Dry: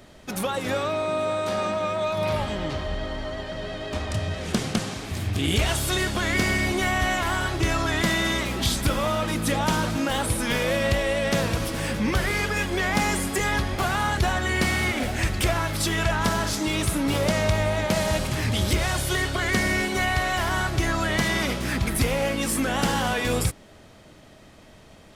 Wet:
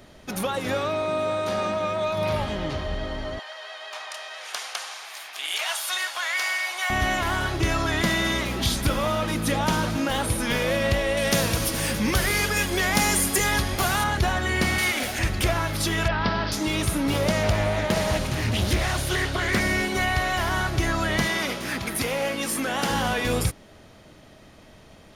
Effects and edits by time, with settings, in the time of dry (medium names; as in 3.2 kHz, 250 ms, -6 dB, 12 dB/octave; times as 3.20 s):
3.39–6.90 s: high-pass 780 Hz 24 dB/octave
11.17–14.04 s: treble shelf 4.9 kHz +12 dB
14.78–15.19 s: tilt EQ +2.5 dB/octave
16.08–16.52 s: elliptic low-pass 5 kHz
17.43–19.60 s: loudspeaker Doppler distortion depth 0.45 ms
21.27–22.90 s: high-pass 310 Hz 6 dB/octave
whole clip: band-stop 7.8 kHz, Q 8.2